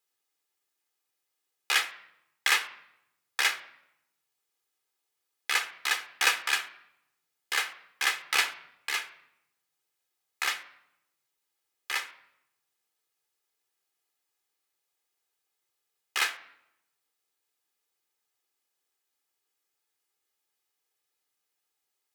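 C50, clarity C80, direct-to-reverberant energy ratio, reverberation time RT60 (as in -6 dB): 14.5 dB, 17.0 dB, 10.0 dB, 0.80 s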